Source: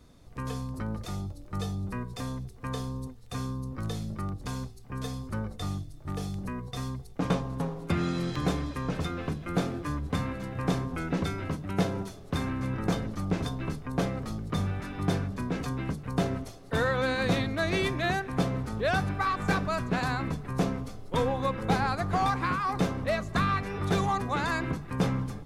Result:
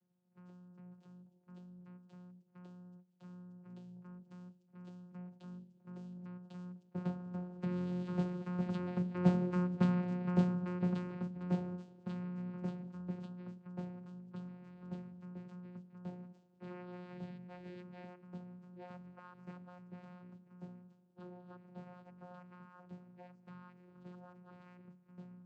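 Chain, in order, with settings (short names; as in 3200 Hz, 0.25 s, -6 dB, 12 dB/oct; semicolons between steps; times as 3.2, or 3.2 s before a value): Doppler pass-by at 9.69, 12 m/s, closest 8.6 m; vocoder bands 8, saw 179 Hz; gain +1.5 dB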